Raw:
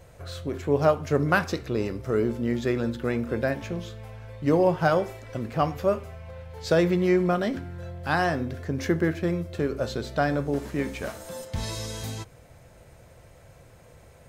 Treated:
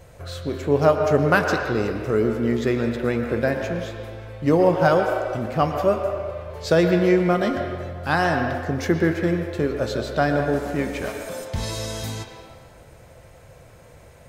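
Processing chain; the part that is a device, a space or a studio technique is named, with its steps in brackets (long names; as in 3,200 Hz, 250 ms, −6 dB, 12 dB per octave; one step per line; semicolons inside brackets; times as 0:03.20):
filtered reverb send (on a send: high-pass filter 310 Hz 24 dB per octave + low-pass filter 4,200 Hz 12 dB per octave + convolution reverb RT60 1.8 s, pre-delay 104 ms, DRR 4 dB)
on the sum: level +3.5 dB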